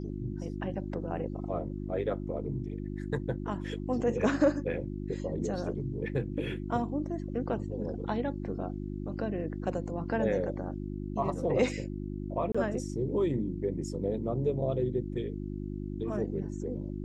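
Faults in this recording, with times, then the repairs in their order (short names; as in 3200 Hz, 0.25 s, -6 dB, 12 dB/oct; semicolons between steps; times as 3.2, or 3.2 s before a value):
hum 50 Hz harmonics 7 -37 dBFS
12.52–12.54 gap 25 ms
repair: de-hum 50 Hz, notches 7; interpolate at 12.52, 25 ms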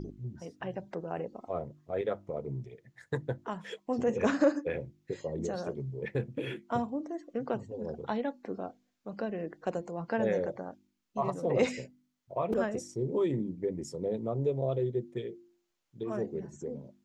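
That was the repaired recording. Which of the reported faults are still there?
none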